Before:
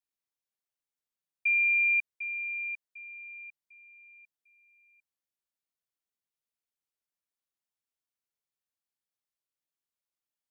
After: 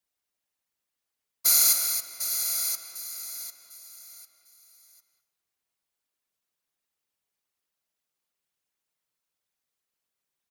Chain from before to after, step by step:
samples in bit-reversed order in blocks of 256 samples
random phases in short frames
in parallel at −7 dB: soft clipping −29.5 dBFS, distortion −7 dB
0:01.72–0:02.31: on the sum: downward compressor 6 to 1, threshold −29 dBFS, peak gain reduction 8.5 dB
far-end echo of a speakerphone 200 ms, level −9 dB
on a send at −15 dB: convolution reverb RT60 0.80 s, pre-delay 155 ms
on the sum: level +4 dB

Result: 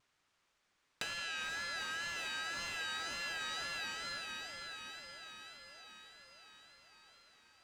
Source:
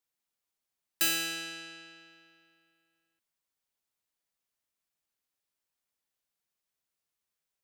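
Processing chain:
Butterworth high-pass 1,000 Hz 36 dB per octave
on a send: feedback delay with all-pass diffusion 463 ms, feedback 63%, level −11 dB
on the sum: tape wow and flutter 70 cents
in parallel at −9 dB: sample-rate reduction 5,500 Hz, jitter 0%
on the sum: downward compressor 8 to 1, threshold −50 dBFS, peak gain reduction 25 dB
high-frequency loss of the air 100 metres
speech leveller within 5 dB 0.5 s
level +17.5 dB

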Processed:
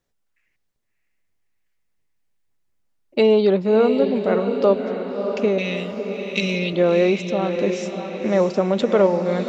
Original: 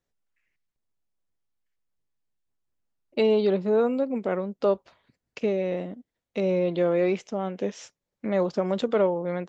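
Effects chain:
0:05.58–0:06.73: drawn EQ curve 170 Hz 0 dB, 960 Hz −19 dB, 2,600 Hz +13 dB
on a send: feedback delay with all-pass diffusion 628 ms, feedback 53%, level −7 dB
on the sum: level +6 dB

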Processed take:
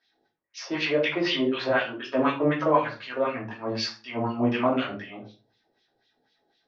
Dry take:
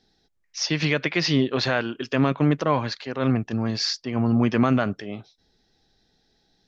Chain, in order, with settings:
auto-filter band-pass sine 4 Hz 450–3,100 Hz
rectangular room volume 180 cubic metres, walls furnished, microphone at 2.8 metres
level +1 dB

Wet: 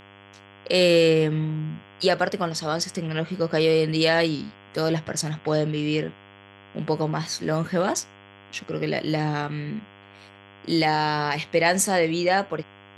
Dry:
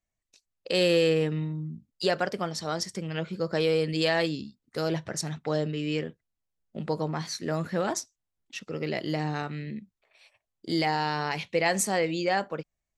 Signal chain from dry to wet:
hum with harmonics 100 Hz, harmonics 34, −54 dBFS −2 dB per octave
level +5 dB

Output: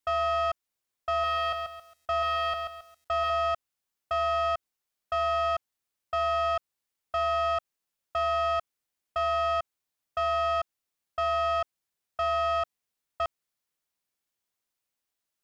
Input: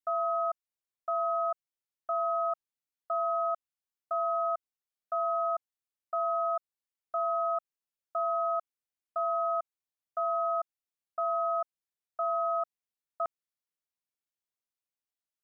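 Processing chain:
soft clipping −31.5 dBFS, distortion −12 dB
0:01.10–0:03.30: feedback echo at a low word length 136 ms, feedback 35%, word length 11 bits, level −5 dB
level +8 dB

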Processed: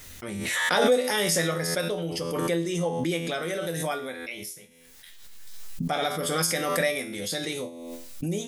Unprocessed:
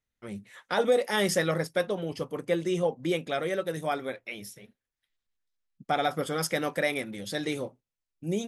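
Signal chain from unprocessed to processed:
high-shelf EQ 3,800 Hz +9.5 dB
tuned comb filter 84 Hz, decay 0.4 s, harmonics all, mix 80%
background raised ahead of every attack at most 27 dB per second
level +6.5 dB

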